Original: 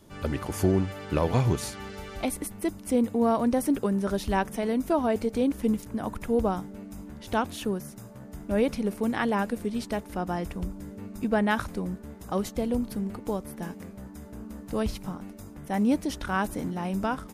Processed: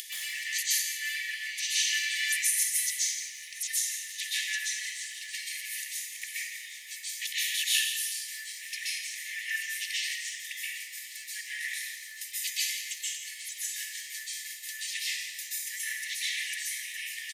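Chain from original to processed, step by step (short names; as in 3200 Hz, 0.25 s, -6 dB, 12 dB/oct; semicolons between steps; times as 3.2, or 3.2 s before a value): trilling pitch shifter -7.5 st, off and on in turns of 0.145 s; upward compressor, threshold -26 dBFS; limiter -23 dBFS, peak gain reduction 10 dB; short-mantissa float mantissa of 8-bit; brick-wall FIR high-pass 1700 Hz; on a send: feedback echo 1.109 s, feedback 48%, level -22.5 dB; on the sum: plate-style reverb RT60 1.4 s, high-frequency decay 0.55×, pre-delay 0.115 s, DRR -9.5 dB; lo-fi delay 0.17 s, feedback 35%, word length 10-bit, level -12 dB; gain +5 dB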